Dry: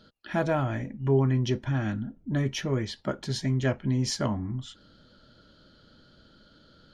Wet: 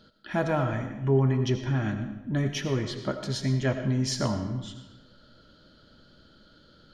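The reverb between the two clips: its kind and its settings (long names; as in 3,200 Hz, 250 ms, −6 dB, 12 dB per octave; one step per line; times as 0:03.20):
comb and all-pass reverb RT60 1 s, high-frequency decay 0.85×, pre-delay 45 ms, DRR 7.5 dB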